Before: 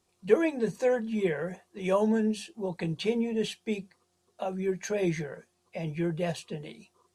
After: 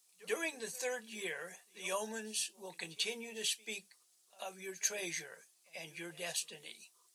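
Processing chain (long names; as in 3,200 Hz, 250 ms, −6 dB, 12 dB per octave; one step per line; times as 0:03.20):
first difference
echo ahead of the sound 92 ms −21.5 dB
level +8 dB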